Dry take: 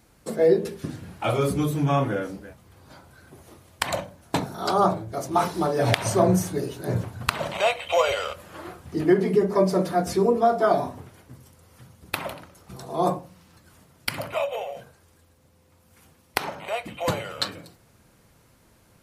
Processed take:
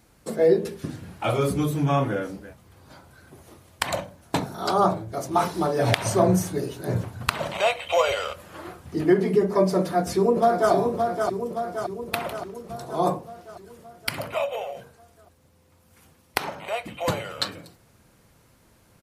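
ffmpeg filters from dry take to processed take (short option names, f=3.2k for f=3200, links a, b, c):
-filter_complex "[0:a]asplit=2[a][b];[b]afade=t=in:st=9.79:d=0.01,afade=t=out:st=10.72:d=0.01,aecho=0:1:570|1140|1710|2280|2850|3420|3990|4560:0.562341|0.337405|0.202443|0.121466|0.0728794|0.0437277|0.0262366|0.015742[c];[a][c]amix=inputs=2:normalize=0"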